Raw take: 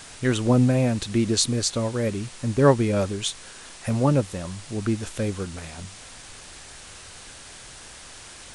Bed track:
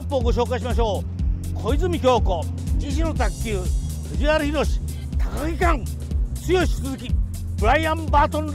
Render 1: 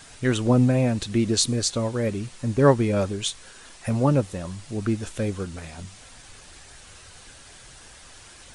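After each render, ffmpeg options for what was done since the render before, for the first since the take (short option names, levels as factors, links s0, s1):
-af "afftdn=nr=6:nf=-44"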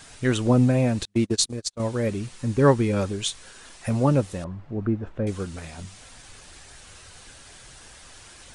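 -filter_complex "[0:a]asettb=1/sr,asplit=3[s0][s1][s2];[s0]atrim=end=1.054[s3];[s1]atrim=start=1.05:end=1.8,asetpts=PTS-STARTPTS,afade=t=in:d=0.004:c=qsin,afade=t=out:st=0.746:d=0.004:c=qsin,agate=range=0.0112:threshold=0.0708:ratio=16:release=100:detection=peak[s4];[s2]atrim=start=1.796[s5];[s3][s4]acrossfade=d=0.004:c1=hsin:c2=qsin[s6];[s6][s5]acrossfade=d=0.004:c1=qsin:c2=hsin,asettb=1/sr,asplit=3[s7][s8][s9];[s7]atrim=end=2.334[s10];[s8]atrim=start=2.33:end=3.1,asetpts=PTS-STARTPTS,afade=t=in:d=0.004:c=qsin,afade=t=out:st=0.766:d=0.004:c=qsin,bandreject=f=640:w=5.2[s11];[s9]atrim=start=3.096[s12];[s10][s11]acrossfade=d=0.004:c1=hsin:c2=qsin[s13];[s13][s12]acrossfade=d=0.004:c1=qsin:c2=hsin,asettb=1/sr,asplit=3[s14][s15][s16];[s14]atrim=end=4.444[s17];[s15]atrim=start=4.44:end=5.27,asetpts=PTS-STARTPTS,afade=t=in:d=0.004:c=qsin,afade=t=out:st=0.826:d=0.004:c=qsin,lowpass=1200[s18];[s16]atrim=start=5.266[s19];[s17][s18]acrossfade=d=0.004:c1=hsin:c2=qsin[s20];[s20][s19]acrossfade=d=0.004:c1=qsin:c2=hsin"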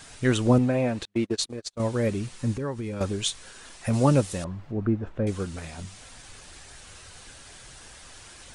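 -filter_complex "[0:a]asettb=1/sr,asplit=3[s0][s1][s2];[s0]atrim=end=0.584[s3];[s1]atrim=start=0.58:end=1.7,asetpts=PTS-STARTPTS,afade=t=in:d=0.004:c=qsin,afade=t=out:st=1.116:d=0.004:c=qsin,bass=f=250:g=-8,treble=f=4000:g=-9[s4];[s2]atrim=start=1.696[s5];[s3][s4]acrossfade=d=0.004:c1=hsin:c2=qsin[s6];[s6][s5]acrossfade=d=0.004:c1=qsin:c2=hsin,asettb=1/sr,asplit=3[s7][s8][s9];[s7]atrim=end=2.534[s10];[s8]atrim=start=2.53:end=3.01,asetpts=PTS-STARTPTS,afade=t=in:d=0.004:c=qsin,afade=t=out:st=0.476:d=0.004:c=qsin,acompressor=threshold=0.0251:ratio=3:attack=3.2:release=140:knee=1:detection=peak[s11];[s9]atrim=start=3.006[s12];[s10][s11]acrossfade=d=0.004:c1=hsin:c2=qsin[s13];[s13][s12]acrossfade=d=0.004:c1=qsin:c2=hsin,asettb=1/sr,asplit=3[s14][s15][s16];[s14]atrim=end=3.934[s17];[s15]atrim=start=3.93:end=4.72,asetpts=PTS-STARTPTS,afade=t=in:d=0.004:c=qsin,afade=t=out:st=0.786:d=0.004:c=qsin,highshelf=f=3100:g=8.5[s18];[s16]atrim=start=4.716[s19];[s17][s18]acrossfade=d=0.004:c1=hsin:c2=qsin[s20];[s20][s19]acrossfade=d=0.004:c1=qsin:c2=hsin"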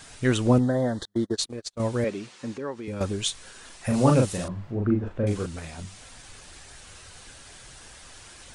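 -filter_complex "[0:a]asettb=1/sr,asplit=3[s0][s1][s2];[s0]atrim=end=0.594[s3];[s1]atrim=start=0.59:end=1.37,asetpts=PTS-STARTPTS,afade=t=in:d=0.004:c=qsin,afade=t=out:st=0.776:d=0.004:c=qsin,asuperstop=centerf=2500:order=8:qfactor=2.1[s4];[s2]atrim=start=1.366[s5];[s3][s4]acrossfade=d=0.004:c1=hsin:c2=qsin[s6];[s6][s5]acrossfade=d=0.004:c1=qsin:c2=hsin,asettb=1/sr,asplit=3[s7][s8][s9];[s7]atrim=end=2.044[s10];[s8]atrim=start=2.04:end=2.88,asetpts=PTS-STARTPTS,afade=t=in:d=0.004:c=qsin,afade=t=out:st=0.836:d=0.004:c=qsin,highpass=270,lowpass=6300[s11];[s9]atrim=start=2.876[s12];[s10][s11]acrossfade=d=0.004:c1=hsin:c2=qsin[s13];[s13][s12]acrossfade=d=0.004:c1=qsin:c2=hsin,asettb=1/sr,asplit=3[s14][s15][s16];[s14]atrim=end=3.854[s17];[s15]atrim=start=3.85:end=5.46,asetpts=PTS-STARTPTS,afade=t=in:d=0.004:c=qsin,afade=t=out:st=1.606:d=0.004:c=qsin,asplit=2[s18][s19];[s19]adelay=39,volume=0.708[s20];[s18][s20]amix=inputs=2:normalize=0,atrim=end_sample=71001[s21];[s16]atrim=start=5.456[s22];[s17][s21]acrossfade=d=0.004:c1=hsin:c2=qsin[s23];[s23][s22]acrossfade=d=0.004:c1=qsin:c2=hsin"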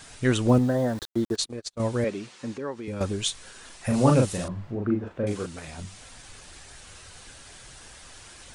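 -filter_complex "[0:a]asettb=1/sr,asplit=3[s0][s1][s2];[s0]atrim=end=0.484[s3];[s1]atrim=start=0.48:end=1.36,asetpts=PTS-STARTPTS,afade=t=in:d=0.004:c=qsin,afade=t=out:st=0.876:d=0.004:c=qsin,aeval=exprs='val(0)*gte(abs(val(0)),0.0112)':c=same[s4];[s2]atrim=start=1.356[s5];[s3][s4]acrossfade=d=0.004:c1=hsin:c2=qsin[s6];[s6][s5]acrossfade=d=0.004:c1=qsin:c2=hsin,asettb=1/sr,asplit=3[s7][s8][s9];[s7]atrim=end=4.754[s10];[s8]atrim=start=4.75:end=5.68,asetpts=PTS-STARTPTS,afade=t=in:d=0.004:c=qsin,afade=t=out:st=0.926:d=0.004:c=qsin,highpass=f=180:p=1[s11];[s9]atrim=start=5.676[s12];[s10][s11]acrossfade=d=0.004:c1=hsin:c2=qsin[s13];[s13][s12]acrossfade=d=0.004:c1=qsin:c2=hsin"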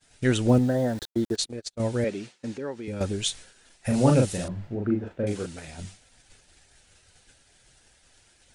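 -af "agate=range=0.0224:threshold=0.0141:ratio=3:detection=peak,equalizer=f=1100:w=4.4:g=-9.5"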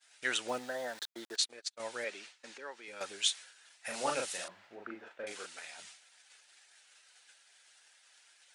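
-af "highpass=1100,highshelf=f=6400:g=-6"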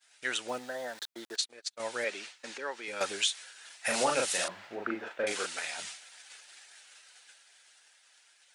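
-af "dynaudnorm=f=250:g=17:m=3.55,alimiter=limit=0.141:level=0:latency=1:release=378"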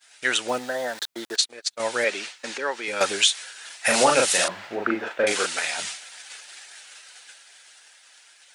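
-af "volume=3.16"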